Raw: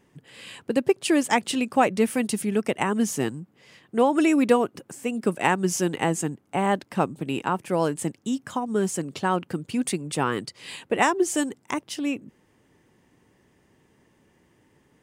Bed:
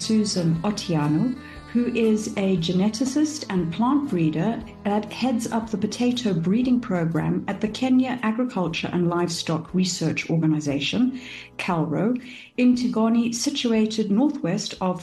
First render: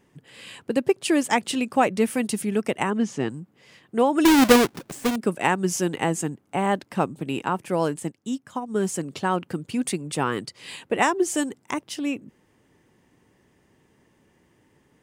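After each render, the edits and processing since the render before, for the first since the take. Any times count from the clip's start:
0:02.90–0:03.30: high-frequency loss of the air 120 metres
0:04.25–0:05.16: each half-wave held at its own peak
0:07.99–0:08.80: expander for the loud parts, over −38 dBFS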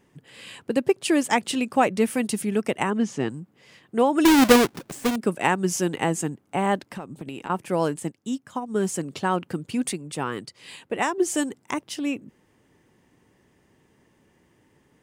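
0:06.83–0:07.50: downward compressor 10 to 1, threshold −30 dBFS
0:09.93–0:11.18: clip gain −4 dB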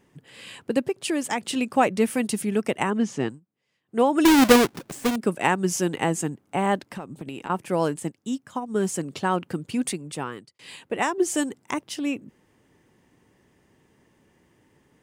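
0:00.80–0:01.56: downward compressor 2 to 1, threshold −25 dBFS
0:03.26–0:04.00: duck −23 dB, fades 0.14 s
0:10.09–0:10.59: fade out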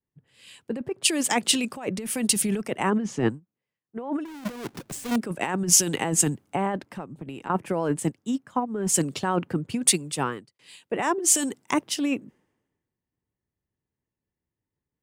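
compressor whose output falls as the input rises −26 dBFS, ratio −1
multiband upward and downward expander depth 100%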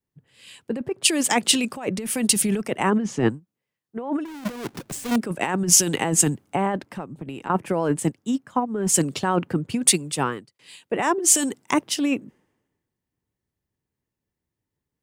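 level +3 dB
brickwall limiter −2 dBFS, peak gain reduction 1.5 dB

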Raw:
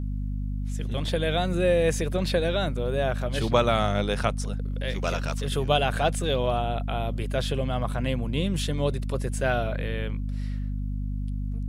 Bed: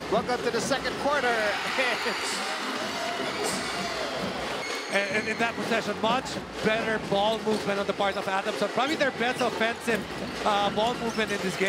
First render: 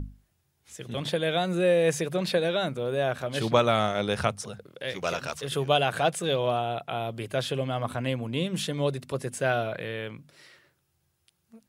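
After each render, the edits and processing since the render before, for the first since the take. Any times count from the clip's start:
mains-hum notches 50/100/150/200/250 Hz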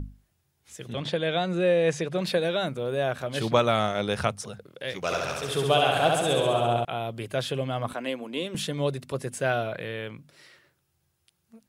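0:00.93–0:02.16: low-pass filter 6,100 Hz
0:05.03–0:06.85: flutter between parallel walls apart 11.6 metres, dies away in 1.3 s
0:07.93–0:08.55: high-pass filter 240 Hz 24 dB per octave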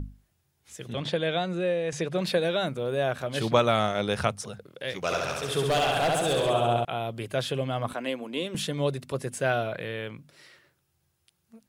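0:01.20–0:01.92: fade out, to −8 dB
0:05.64–0:06.50: hard clipping −20.5 dBFS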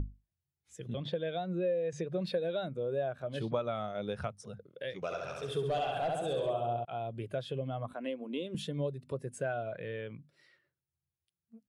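downward compressor 3 to 1, threshold −35 dBFS, peak gain reduction 14 dB
every bin expanded away from the loudest bin 1.5 to 1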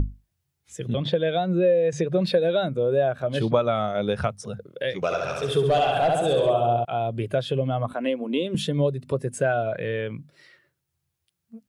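level +12 dB

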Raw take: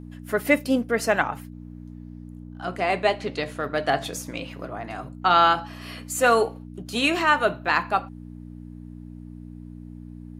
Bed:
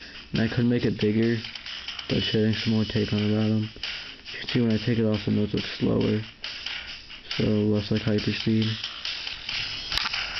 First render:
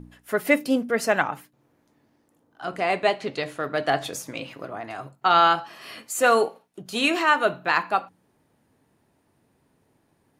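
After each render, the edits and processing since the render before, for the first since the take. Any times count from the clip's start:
hum removal 60 Hz, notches 5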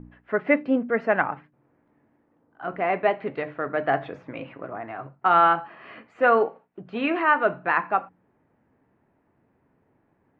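low-pass filter 2,200 Hz 24 dB per octave
mains-hum notches 50/100/150 Hz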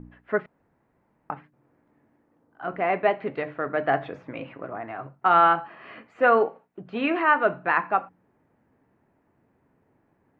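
0:00.46–0:01.30: fill with room tone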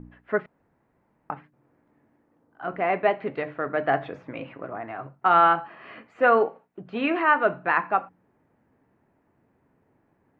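no processing that can be heard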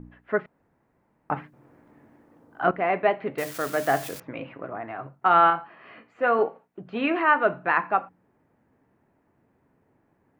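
0:01.31–0:02.71: clip gain +9.5 dB
0:03.38–0:04.20: spike at every zero crossing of −26 dBFS
0:05.50–0:06.39: tuned comb filter 59 Hz, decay 0.24 s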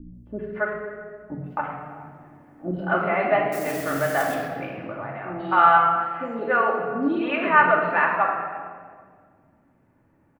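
three-band delay without the direct sound lows, highs, mids 140/270 ms, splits 420/4,100 Hz
rectangular room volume 2,700 cubic metres, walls mixed, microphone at 2.5 metres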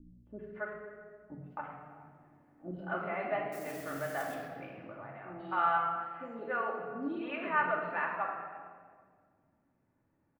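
level −13.5 dB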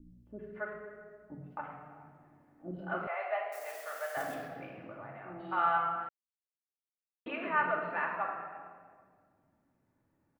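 0:03.07–0:04.17: Butterworth high-pass 520 Hz
0:06.09–0:07.26: silence

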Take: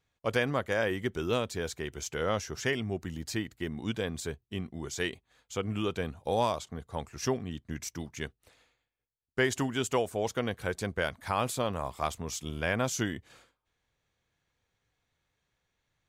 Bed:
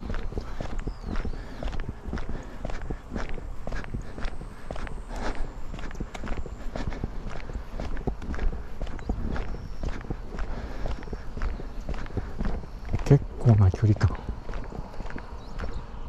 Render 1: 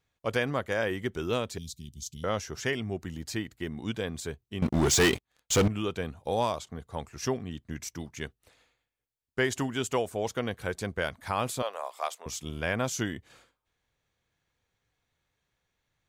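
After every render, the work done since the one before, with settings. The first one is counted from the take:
0:01.58–0:02.24: elliptic band-stop filter 220–3,800 Hz, stop band 50 dB
0:04.62–0:05.68: leveller curve on the samples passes 5
0:11.62–0:12.26: Chebyshev high-pass filter 540 Hz, order 3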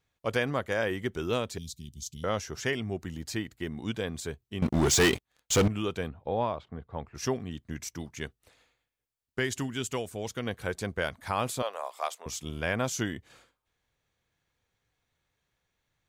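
0:06.08–0:07.15: high-frequency loss of the air 410 metres
0:09.39–0:10.46: parametric band 730 Hz −7.5 dB 2 octaves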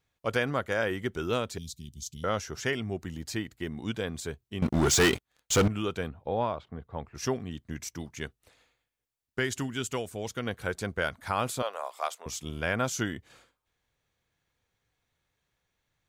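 dynamic equaliser 1,400 Hz, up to +6 dB, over −52 dBFS, Q 7.4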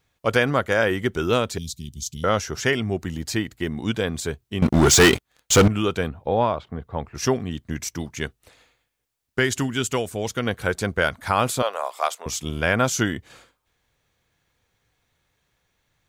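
level +8.5 dB

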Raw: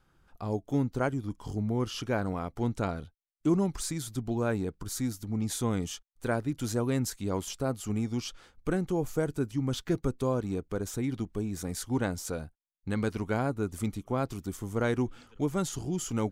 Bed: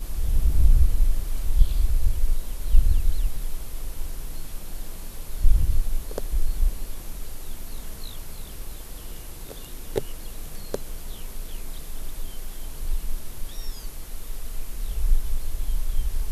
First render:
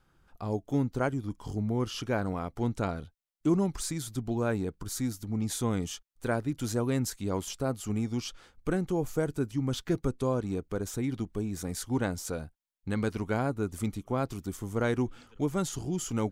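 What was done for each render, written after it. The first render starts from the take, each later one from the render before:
0:10.06–0:10.48: linear-phase brick-wall low-pass 12,000 Hz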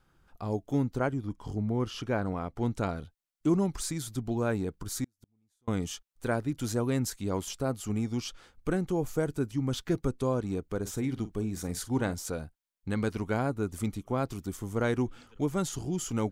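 0:00.98–0:02.63: high-shelf EQ 4,700 Hz −7.5 dB
0:05.04–0:05.68: gate with flip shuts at −29 dBFS, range −42 dB
0:10.79–0:12.14: double-tracking delay 46 ms −14 dB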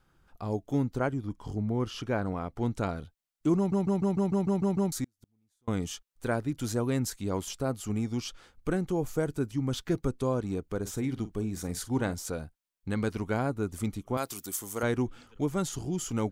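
0:03.57: stutter in place 0.15 s, 9 plays
0:14.17–0:14.83: RIAA equalisation recording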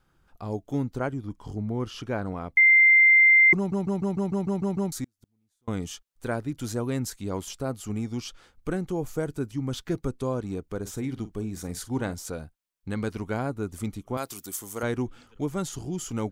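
0:02.57–0:03.53: beep over 2,090 Hz −13 dBFS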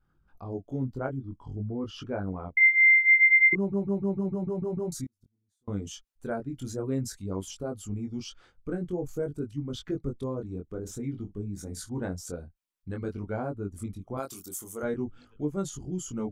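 spectral envelope exaggerated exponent 1.5
chorus effect 0.52 Hz, delay 20 ms, depth 2.9 ms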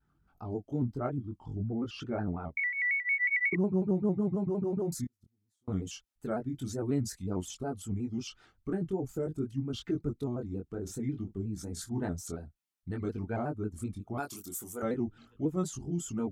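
notch comb filter 520 Hz
pitch modulation by a square or saw wave square 5.5 Hz, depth 100 cents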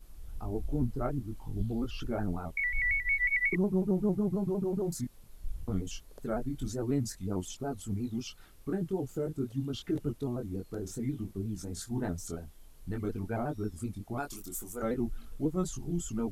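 mix in bed −21 dB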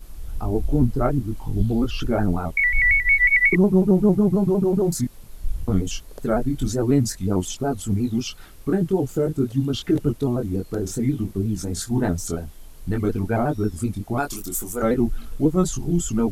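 level +12 dB

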